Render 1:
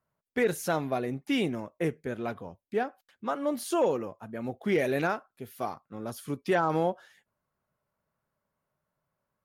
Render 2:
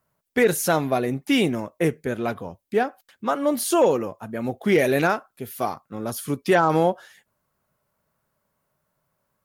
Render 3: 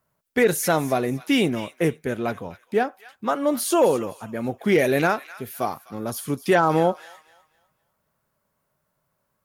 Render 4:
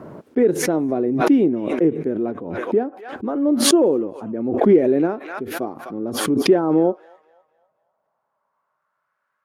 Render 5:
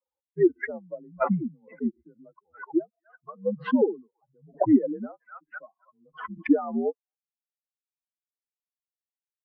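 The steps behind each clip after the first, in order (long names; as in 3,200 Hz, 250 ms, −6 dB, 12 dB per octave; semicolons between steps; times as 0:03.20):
high-shelf EQ 6,800 Hz +7 dB; level +7.5 dB
delay with a high-pass on its return 253 ms, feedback 30%, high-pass 1,500 Hz, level −14 dB
band-pass filter sweep 320 Hz → 1,500 Hz, 0:06.75–0:09.17; background raised ahead of every attack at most 54 dB per second; level +8 dB
spectral dynamics exaggerated over time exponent 3; single-sideband voice off tune −90 Hz 360–2,200 Hz; level +1.5 dB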